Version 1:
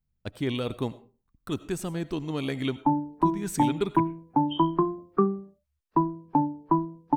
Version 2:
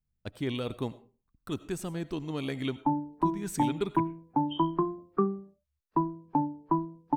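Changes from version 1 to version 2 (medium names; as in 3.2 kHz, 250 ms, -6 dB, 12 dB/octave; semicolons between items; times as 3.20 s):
speech -3.5 dB; background -4.0 dB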